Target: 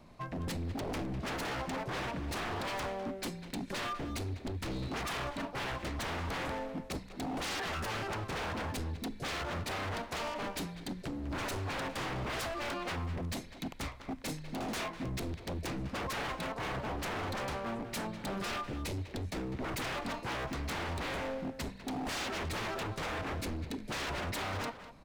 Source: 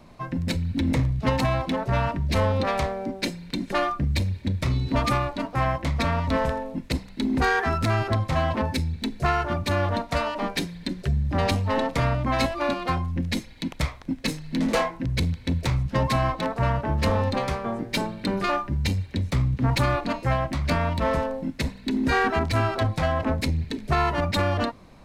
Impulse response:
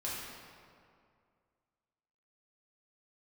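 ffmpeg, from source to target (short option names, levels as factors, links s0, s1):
-filter_complex "[0:a]aeval=exprs='0.0562*(abs(mod(val(0)/0.0562+3,4)-2)-1)':c=same,asplit=2[s0][s1];[s1]adelay=200,highpass=300,lowpass=3400,asoftclip=type=hard:threshold=0.0224,volume=0.398[s2];[s0][s2]amix=inputs=2:normalize=0,volume=0.447"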